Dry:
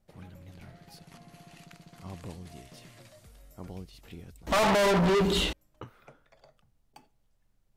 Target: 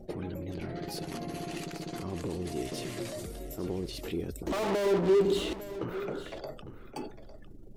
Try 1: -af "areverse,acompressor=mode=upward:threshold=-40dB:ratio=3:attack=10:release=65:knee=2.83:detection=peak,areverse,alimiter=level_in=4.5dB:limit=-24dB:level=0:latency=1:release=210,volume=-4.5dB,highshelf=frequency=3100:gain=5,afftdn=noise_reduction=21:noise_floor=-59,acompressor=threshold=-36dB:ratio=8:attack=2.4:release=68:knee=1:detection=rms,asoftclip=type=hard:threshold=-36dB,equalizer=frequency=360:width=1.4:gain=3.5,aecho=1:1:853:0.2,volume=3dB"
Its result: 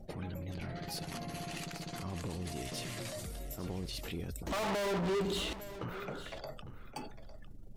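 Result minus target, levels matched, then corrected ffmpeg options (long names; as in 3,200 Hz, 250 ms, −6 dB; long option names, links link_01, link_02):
500 Hz band −3.0 dB
-af "areverse,acompressor=mode=upward:threshold=-40dB:ratio=3:attack=10:release=65:knee=2.83:detection=peak,areverse,alimiter=level_in=4.5dB:limit=-24dB:level=0:latency=1:release=210,volume=-4.5dB,highshelf=frequency=3100:gain=5,afftdn=noise_reduction=21:noise_floor=-59,acompressor=threshold=-36dB:ratio=8:attack=2.4:release=68:knee=1:detection=rms,asoftclip=type=hard:threshold=-36dB,equalizer=frequency=360:width=1.4:gain=15,aecho=1:1:853:0.2,volume=3dB"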